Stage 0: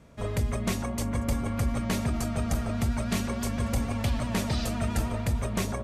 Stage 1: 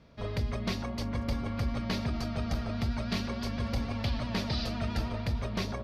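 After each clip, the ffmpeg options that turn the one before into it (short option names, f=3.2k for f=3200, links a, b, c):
-af "highshelf=f=6.1k:t=q:w=3:g=-9.5,volume=-4dB"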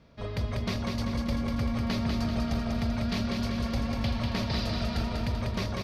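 -af "aecho=1:1:194|388|582|776|970|1164|1358|1552:0.668|0.368|0.202|0.111|0.0612|0.0336|0.0185|0.0102"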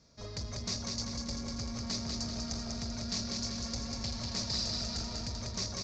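-af "asoftclip=type=tanh:threshold=-24.5dB,aexciter=amount=6.9:drive=8.8:freq=4.6k,aresample=16000,aresample=44100,volume=-8dB"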